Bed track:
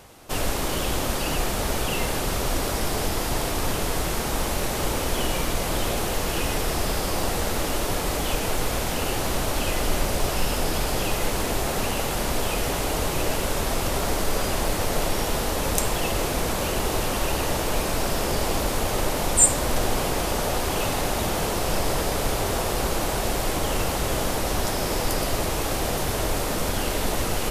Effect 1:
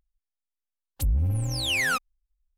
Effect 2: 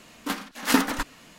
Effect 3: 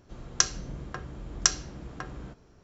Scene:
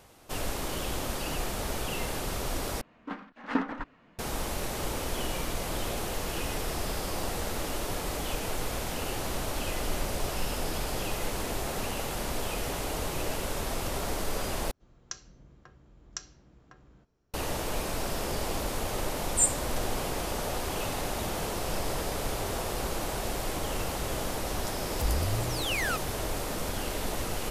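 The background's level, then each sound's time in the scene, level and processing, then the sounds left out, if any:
bed track -7.5 dB
2.81 s: replace with 2 -7 dB + low-pass 1.7 kHz
14.71 s: replace with 3 -16.5 dB
23.99 s: add 1 -6.5 dB

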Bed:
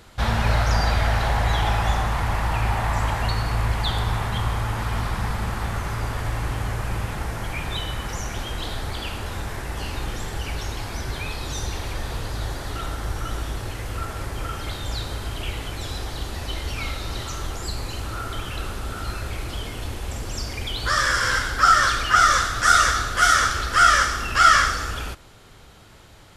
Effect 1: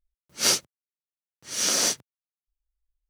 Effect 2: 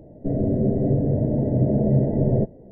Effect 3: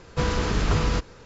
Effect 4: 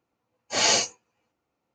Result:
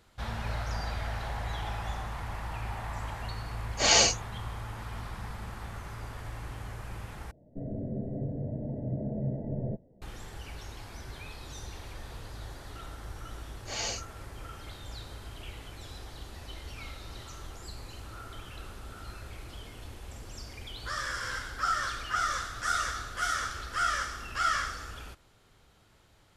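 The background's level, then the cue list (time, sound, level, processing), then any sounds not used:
bed -14 dB
3.27 s: add 4 -0.5 dB
7.31 s: replace with 2 -13 dB + peaking EQ 380 Hz -5 dB 0.76 oct
13.15 s: add 4 -13.5 dB
not used: 1, 3

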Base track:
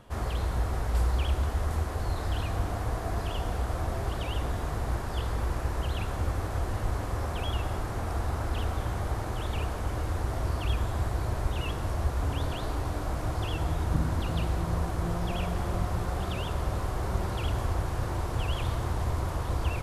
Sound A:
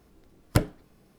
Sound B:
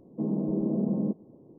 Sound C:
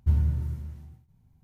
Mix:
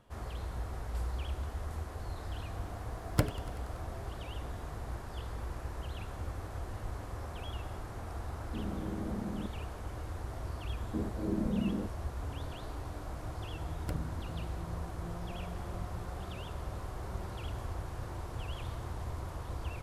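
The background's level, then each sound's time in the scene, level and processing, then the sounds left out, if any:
base track -10 dB
2.63 s: add A -6 dB + modulated delay 95 ms, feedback 78%, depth 87 cents, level -17 dB
8.35 s: add B -11.5 dB
10.75 s: add B -4 dB + cancelling through-zero flanger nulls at 1.3 Hz, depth 3.2 ms
13.33 s: add A -18 dB
not used: C

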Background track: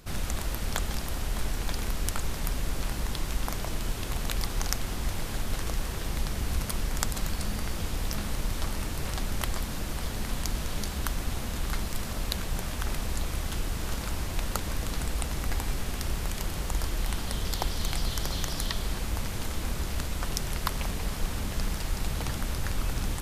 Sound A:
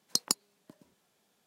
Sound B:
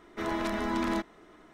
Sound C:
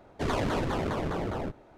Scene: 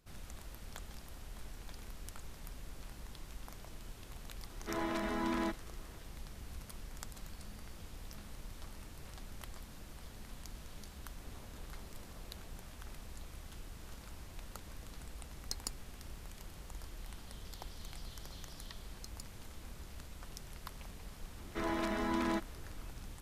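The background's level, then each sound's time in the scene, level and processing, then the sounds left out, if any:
background track -18 dB
4.50 s: add B -5.5 dB
11.05 s: add C -17.5 dB + compression, threshold -41 dBFS
15.36 s: add A -13 dB
18.89 s: add A -3 dB + amplifier tone stack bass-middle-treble 10-0-1
21.38 s: add B -4.5 dB

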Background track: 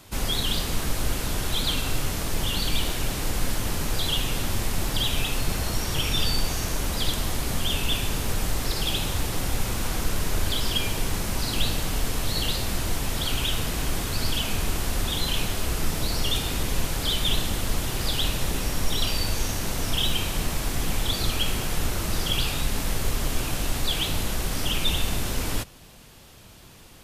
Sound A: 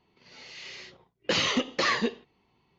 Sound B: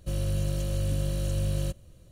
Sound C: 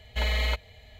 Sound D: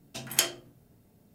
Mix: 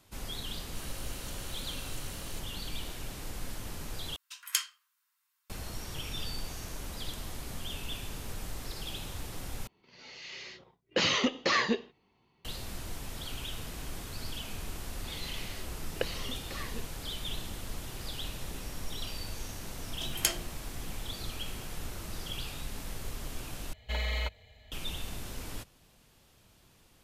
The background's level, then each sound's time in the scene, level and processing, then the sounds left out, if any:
background track -13.5 dB
0.68 s: add B -3 dB + high-pass 1.3 kHz
4.16 s: replace with D -4.5 dB + Chebyshev high-pass 1 kHz, order 6
9.67 s: replace with A -1.5 dB
14.72 s: add A -17.5 dB + recorder AGC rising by 47 dB/s
19.86 s: add D -4 dB
23.73 s: replace with C -6 dB

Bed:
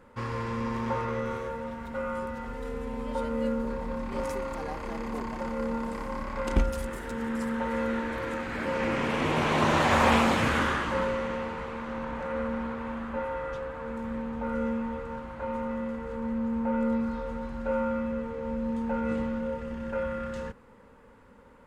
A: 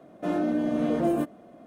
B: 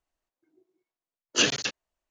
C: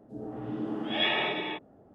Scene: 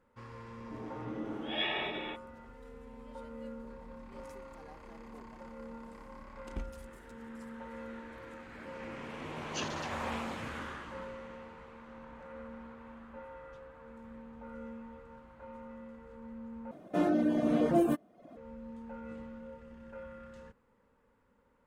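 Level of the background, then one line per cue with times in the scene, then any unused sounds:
bed -15.5 dB
0.58 s: add C -6.5 dB
8.18 s: add B -17.5 dB
16.71 s: replace with A -0.5 dB + reverb removal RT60 0.66 s

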